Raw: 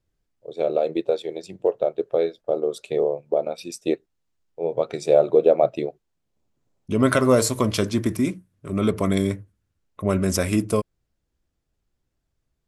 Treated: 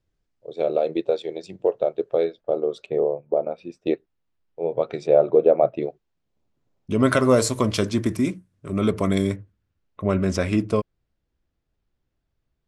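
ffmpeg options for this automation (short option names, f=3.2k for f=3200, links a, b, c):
-af "asetnsamples=n=441:p=0,asendcmd='2.24 lowpass f 3800;2.86 lowpass f 1600;3.87 lowpass f 3600;5.07 lowpass f 2200;5.82 lowpass f 5000;6.91 lowpass f 9300;9.36 lowpass f 4400',lowpass=6.5k"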